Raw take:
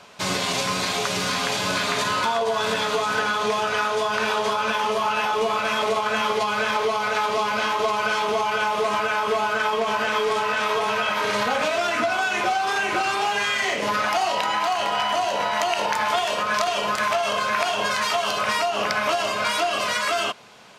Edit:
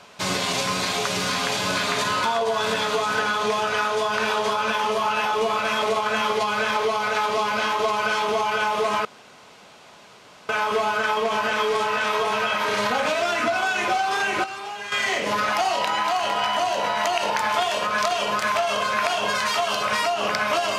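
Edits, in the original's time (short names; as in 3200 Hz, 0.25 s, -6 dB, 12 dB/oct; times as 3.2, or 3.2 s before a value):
9.05 insert room tone 1.44 s
13–13.48 gain -10 dB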